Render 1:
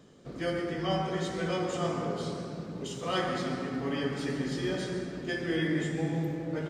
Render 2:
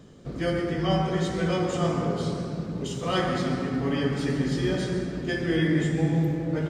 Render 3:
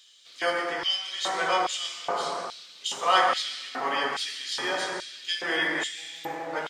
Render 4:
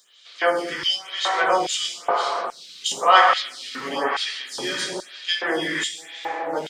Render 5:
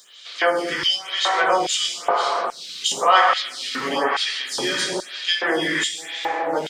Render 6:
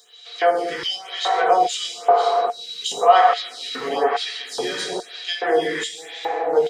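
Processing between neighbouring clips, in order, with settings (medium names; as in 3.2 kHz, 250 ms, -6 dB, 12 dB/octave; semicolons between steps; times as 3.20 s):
bass shelf 150 Hz +10.5 dB; trim +3.5 dB
LFO high-pass square 1.2 Hz 880–3400 Hz; trim +5 dB
lamp-driven phase shifter 1 Hz; trim +8 dB
compression 1.5:1, threshold -37 dBFS, peak gain reduction 10 dB; trim +8.5 dB
small resonant body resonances 460/710/3900 Hz, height 18 dB, ringing for 85 ms; trim -5.5 dB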